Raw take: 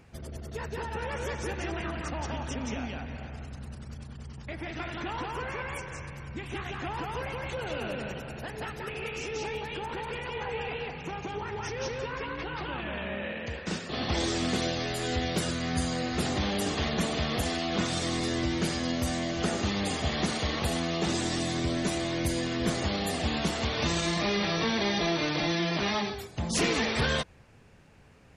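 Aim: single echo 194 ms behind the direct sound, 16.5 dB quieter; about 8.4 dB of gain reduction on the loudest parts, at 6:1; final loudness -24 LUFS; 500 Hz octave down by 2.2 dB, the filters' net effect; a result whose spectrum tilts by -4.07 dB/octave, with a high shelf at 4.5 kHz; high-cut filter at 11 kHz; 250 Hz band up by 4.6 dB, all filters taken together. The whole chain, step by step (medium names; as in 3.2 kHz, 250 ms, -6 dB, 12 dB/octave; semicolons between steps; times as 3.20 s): low-pass 11 kHz; peaking EQ 250 Hz +7.5 dB; peaking EQ 500 Hz -6 dB; treble shelf 4.5 kHz +7 dB; compression 6:1, threshold -30 dBFS; delay 194 ms -16.5 dB; trim +10 dB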